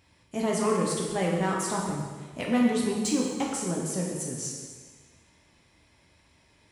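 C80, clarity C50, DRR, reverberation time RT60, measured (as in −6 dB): 3.5 dB, 1.5 dB, −2.5 dB, 1.5 s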